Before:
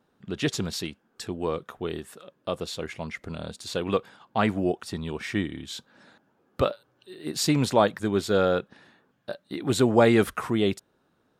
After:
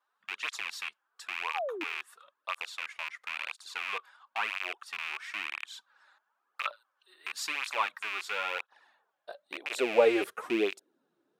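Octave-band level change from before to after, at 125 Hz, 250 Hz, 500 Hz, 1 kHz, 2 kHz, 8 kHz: under -30 dB, -13.5 dB, -7.5 dB, -5.5 dB, +1.0 dB, -9.0 dB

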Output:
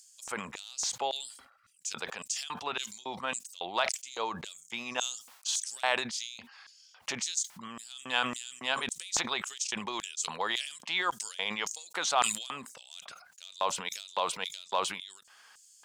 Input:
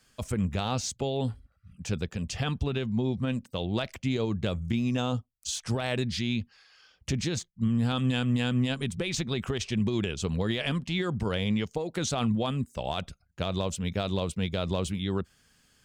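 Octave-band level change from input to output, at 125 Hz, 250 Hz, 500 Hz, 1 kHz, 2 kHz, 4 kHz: -26.5 dB, -17.5 dB, -7.0 dB, +4.0 dB, +2.5 dB, +1.0 dB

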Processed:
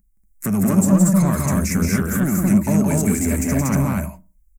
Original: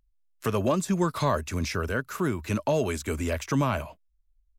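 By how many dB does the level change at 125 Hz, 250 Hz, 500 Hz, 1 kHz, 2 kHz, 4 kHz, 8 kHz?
+11.0 dB, +13.5 dB, +1.5 dB, +1.5 dB, +4.0 dB, 0.0 dB, +14.5 dB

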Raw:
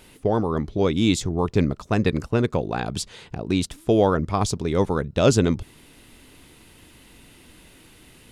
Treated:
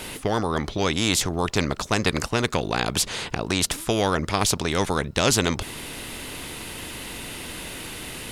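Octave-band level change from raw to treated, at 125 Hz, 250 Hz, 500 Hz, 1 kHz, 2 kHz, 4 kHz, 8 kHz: -3.5 dB, -4.0 dB, -3.5 dB, +1.5 dB, +6.5 dB, +7.5 dB, +8.0 dB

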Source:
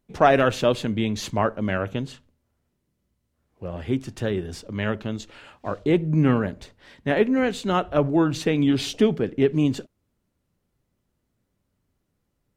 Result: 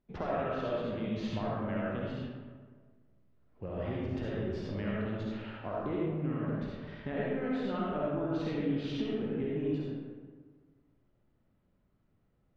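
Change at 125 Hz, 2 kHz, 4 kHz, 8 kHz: -10.5 dB, -14.0 dB, -15.0 dB, under -25 dB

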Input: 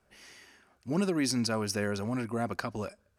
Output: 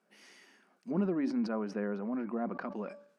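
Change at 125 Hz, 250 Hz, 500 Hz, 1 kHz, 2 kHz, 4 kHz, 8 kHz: -7.0 dB, -1.0 dB, -3.0 dB, -4.5 dB, -8.5 dB, -18.5 dB, under -20 dB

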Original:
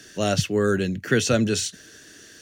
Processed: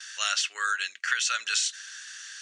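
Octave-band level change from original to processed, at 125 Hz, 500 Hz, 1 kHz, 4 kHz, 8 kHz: under -40 dB, -30.0 dB, -0.5 dB, +2.0 dB, +0.5 dB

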